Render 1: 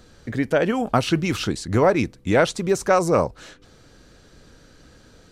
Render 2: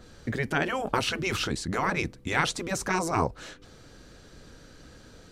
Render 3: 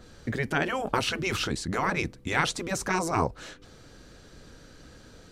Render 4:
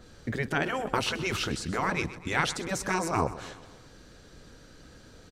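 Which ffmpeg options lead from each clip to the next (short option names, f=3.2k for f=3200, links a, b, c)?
-af "afftfilt=real='re*lt(hypot(re,im),0.447)':imag='im*lt(hypot(re,im),0.447)':win_size=1024:overlap=0.75,adynamicequalizer=threshold=0.00891:dfrequency=2700:dqfactor=0.7:tfrequency=2700:tqfactor=0.7:attack=5:release=100:ratio=0.375:range=1.5:mode=cutabove:tftype=highshelf"
-af anull
-af "aecho=1:1:127|254|381|508|635:0.168|0.0907|0.049|0.0264|0.0143,volume=-1.5dB"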